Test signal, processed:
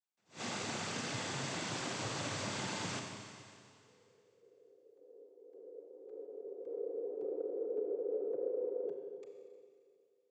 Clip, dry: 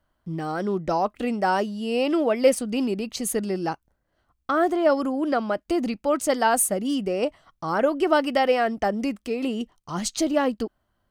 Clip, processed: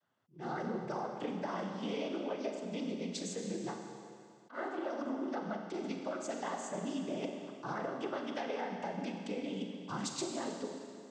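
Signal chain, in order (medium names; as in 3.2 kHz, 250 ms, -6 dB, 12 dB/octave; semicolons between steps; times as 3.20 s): noise-vocoded speech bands 16; compression 16:1, threshold -30 dBFS; Schroeder reverb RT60 2.3 s, combs from 30 ms, DRR 3 dB; attacks held to a fixed rise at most 230 dB/s; trim -5.5 dB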